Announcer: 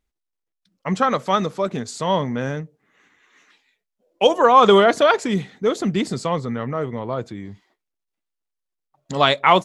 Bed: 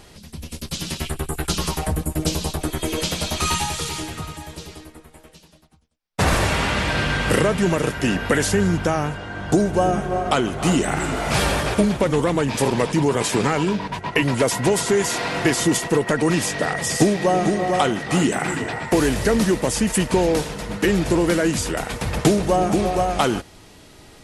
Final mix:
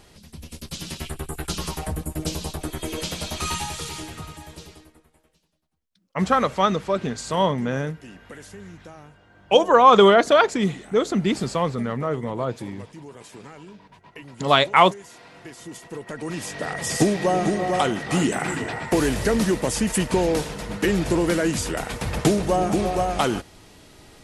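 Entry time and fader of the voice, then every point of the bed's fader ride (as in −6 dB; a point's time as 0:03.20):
5.30 s, −0.5 dB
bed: 0:04.63 −5.5 dB
0:05.58 −22.5 dB
0:15.51 −22.5 dB
0:16.95 −2.5 dB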